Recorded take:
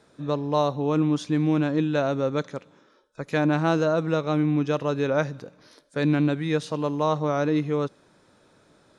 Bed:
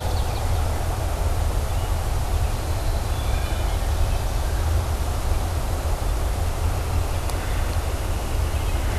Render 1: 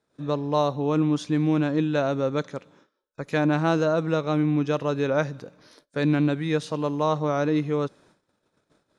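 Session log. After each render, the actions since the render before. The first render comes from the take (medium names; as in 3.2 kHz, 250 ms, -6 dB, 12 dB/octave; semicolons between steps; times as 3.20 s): gate -56 dBFS, range -18 dB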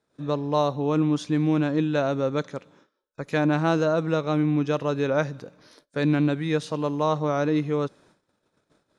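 no audible change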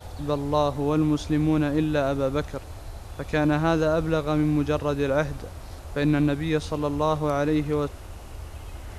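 add bed -15 dB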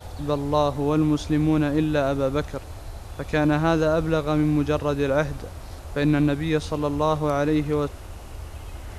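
trim +1.5 dB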